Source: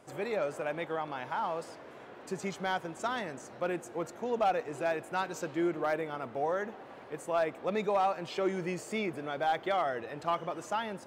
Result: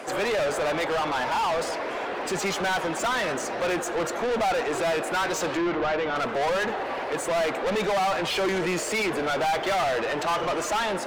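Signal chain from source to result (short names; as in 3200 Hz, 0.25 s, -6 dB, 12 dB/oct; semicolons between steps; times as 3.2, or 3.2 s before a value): bin magnitudes rounded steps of 15 dB; HPF 120 Hz 24 dB/oct; overdrive pedal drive 31 dB, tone 4900 Hz, clips at -18.5 dBFS; 5.57–6.16 air absorption 160 m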